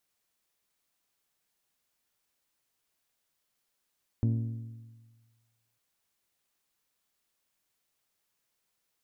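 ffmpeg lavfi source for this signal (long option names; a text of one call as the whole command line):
ffmpeg -f lavfi -i "aevalsrc='0.075*pow(10,-3*t/1.49)*sin(2*PI*114*t)+0.0355*pow(10,-3*t/1.21)*sin(2*PI*228*t)+0.0168*pow(10,-3*t/1.146)*sin(2*PI*273.6*t)+0.00794*pow(10,-3*t/1.072)*sin(2*PI*342*t)+0.00376*pow(10,-3*t/0.983)*sin(2*PI*456*t)+0.00178*pow(10,-3*t/0.919)*sin(2*PI*570*t)+0.000841*pow(10,-3*t/0.87)*sin(2*PI*684*t)+0.000398*pow(10,-3*t/0.798)*sin(2*PI*912*t)':duration=1.55:sample_rate=44100" out.wav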